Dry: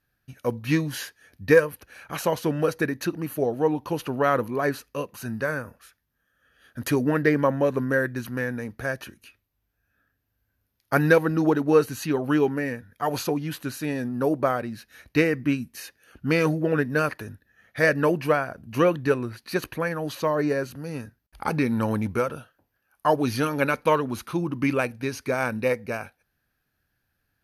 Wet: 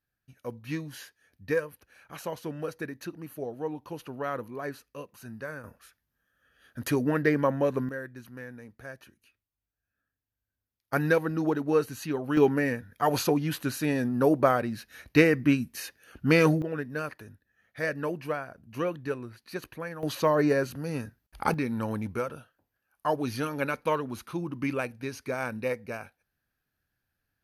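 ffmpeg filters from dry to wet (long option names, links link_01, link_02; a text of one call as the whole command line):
ffmpeg -i in.wav -af "asetnsamples=nb_out_samples=441:pad=0,asendcmd='5.64 volume volume -3.5dB;7.89 volume volume -14dB;10.93 volume volume -6dB;12.37 volume volume 1dB;16.62 volume volume -10dB;20.03 volume volume 0.5dB;21.54 volume volume -6.5dB',volume=-11dB" out.wav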